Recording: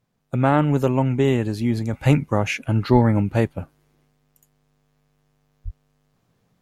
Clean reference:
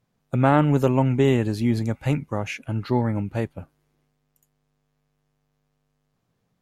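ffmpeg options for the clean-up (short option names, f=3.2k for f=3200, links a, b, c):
-filter_complex "[0:a]asplit=3[a][b][c];[a]afade=t=out:st=2.92:d=0.02[d];[b]highpass=f=140:w=0.5412,highpass=f=140:w=1.3066,afade=t=in:st=2.92:d=0.02,afade=t=out:st=3.04:d=0.02[e];[c]afade=t=in:st=3.04:d=0.02[f];[d][e][f]amix=inputs=3:normalize=0,asplit=3[g][h][i];[g]afade=t=out:st=5.64:d=0.02[j];[h]highpass=f=140:w=0.5412,highpass=f=140:w=1.3066,afade=t=in:st=5.64:d=0.02,afade=t=out:st=5.76:d=0.02[k];[i]afade=t=in:st=5.76:d=0.02[l];[j][k][l]amix=inputs=3:normalize=0,asetnsamples=n=441:p=0,asendcmd='1.93 volume volume -6.5dB',volume=0dB"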